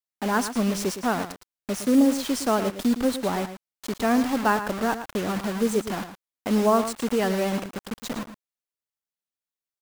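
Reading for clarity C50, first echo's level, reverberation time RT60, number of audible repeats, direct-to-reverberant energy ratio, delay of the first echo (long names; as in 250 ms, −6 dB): no reverb audible, −11.0 dB, no reverb audible, 1, no reverb audible, 112 ms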